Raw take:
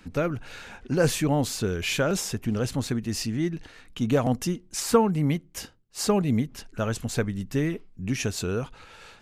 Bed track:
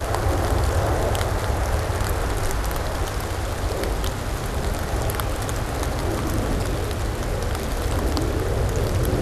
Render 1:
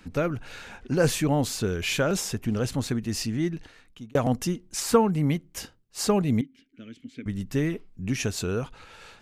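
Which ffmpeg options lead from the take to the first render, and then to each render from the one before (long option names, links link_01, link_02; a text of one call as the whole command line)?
ffmpeg -i in.wav -filter_complex "[0:a]asettb=1/sr,asplit=3[link_01][link_02][link_03];[link_01]atrim=end=6.414[link_04];[link_02]atrim=start=6.41:end=7.26,asetpts=PTS-STARTPTS,afade=type=in:duration=0.004:curve=qsin,afade=type=out:start_time=0.846:duration=0.004:curve=qsin,asplit=3[link_05][link_06][link_07];[link_05]bandpass=frequency=270:width_type=q:width=8,volume=0dB[link_08];[link_06]bandpass=frequency=2290:width_type=q:width=8,volume=-6dB[link_09];[link_07]bandpass=frequency=3010:width_type=q:width=8,volume=-9dB[link_10];[link_08][link_09][link_10]amix=inputs=3:normalize=0[link_11];[link_03]atrim=start=7.256[link_12];[link_04][link_11]acrossfade=duration=0.004:curve1=hsin:curve2=qsin[link_13];[link_13][link_12]acrossfade=duration=0.004:curve1=qsin:curve2=hsin,asplit=2[link_14][link_15];[link_14]atrim=end=4.15,asetpts=PTS-STARTPTS,afade=type=out:start_time=3.51:duration=0.64[link_16];[link_15]atrim=start=4.15,asetpts=PTS-STARTPTS,afade=type=in:duration=0.004:curve=hsin[link_17];[link_16][link_17]concat=n=2:v=0:a=1" out.wav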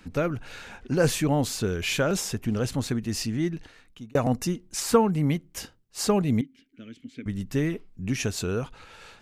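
ffmpeg -i in.wav -filter_complex "[0:a]asettb=1/sr,asplit=3[link_01][link_02][link_03];[link_01]atrim=end=4.064[link_04];[link_02]atrim=start=4.06:end=4.47,asetpts=PTS-STARTPTS,afade=type=in:duration=0.004:curve=qsin,afade=type=out:start_time=0.406:duration=0.004:curve=qsin,asuperstop=centerf=3200:order=20:qfactor=7.9[link_05];[link_03]atrim=start=4.466[link_06];[link_04][link_05]acrossfade=duration=0.004:curve1=hsin:curve2=qsin[link_07];[link_07][link_06]acrossfade=duration=0.004:curve1=qsin:curve2=hsin" out.wav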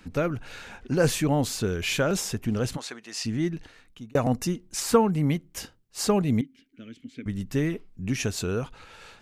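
ffmpeg -i in.wav -filter_complex "[0:a]asplit=3[link_01][link_02][link_03];[link_01]afade=type=out:start_time=2.76:duration=0.02[link_04];[link_02]highpass=670,lowpass=7900,afade=type=in:start_time=2.76:duration=0.02,afade=type=out:start_time=3.24:duration=0.02[link_05];[link_03]afade=type=in:start_time=3.24:duration=0.02[link_06];[link_04][link_05][link_06]amix=inputs=3:normalize=0" out.wav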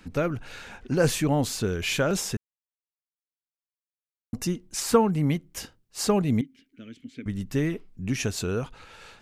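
ffmpeg -i in.wav -filter_complex "[0:a]asplit=3[link_01][link_02][link_03];[link_01]atrim=end=2.37,asetpts=PTS-STARTPTS,afade=type=out:start_time=2.366:duration=0.004:curve=hsin[link_04];[link_02]atrim=start=2.37:end=4.33,asetpts=PTS-STARTPTS,volume=0[link_05];[link_03]atrim=start=4.33,asetpts=PTS-STARTPTS,afade=type=in:duration=0.004:curve=hsin[link_06];[link_04][link_05][link_06]concat=n=3:v=0:a=1" out.wav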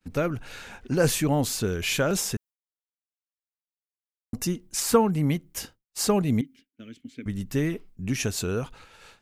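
ffmpeg -i in.wav -af "agate=range=-33dB:threshold=-43dB:ratio=3:detection=peak,highshelf=frequency=10000:gain=8.5" out.wav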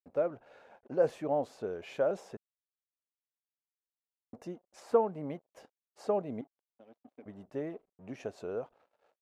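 ffmpeg -i in.wav -af "aeval=exprs='sgn(val(0))*max(abs(val(0))-0.00335,0)':channel_layout=same,bandpass=frequency=610:width_type=q:width=2.6:csg=0" out.wav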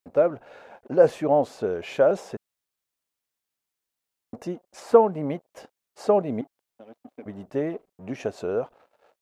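ffmpeg -i in.wav -af "volume=10.5dB" out.wav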